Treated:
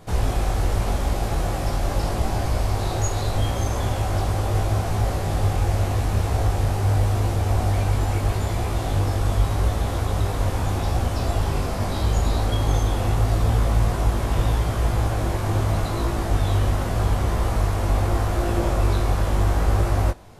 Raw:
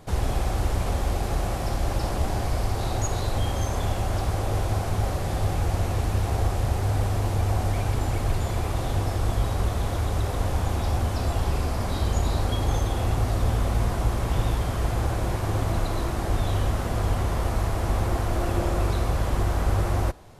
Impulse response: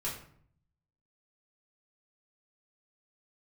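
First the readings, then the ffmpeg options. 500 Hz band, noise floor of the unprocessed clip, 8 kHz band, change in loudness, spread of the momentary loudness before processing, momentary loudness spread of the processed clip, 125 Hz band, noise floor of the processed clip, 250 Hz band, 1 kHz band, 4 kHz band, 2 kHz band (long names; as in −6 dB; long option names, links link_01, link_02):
+2.5 dB, −29 dBFS, +2.5 dB, +3.0 dB, 2 LU, 3 LU, +3.5 dB, −26 dBFS, +2.5 dB, +2.5 dB, +2.5 dB, +2.5 dB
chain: -af "flanger=delay=17.5:depth=3.4:speed=0.81,volume=5.5dB"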